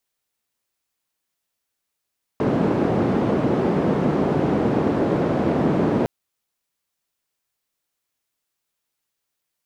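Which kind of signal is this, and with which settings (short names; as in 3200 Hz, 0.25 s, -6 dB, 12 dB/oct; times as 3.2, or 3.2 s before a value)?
noise band 160–360 Hz, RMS -20 dBFS 3.66 s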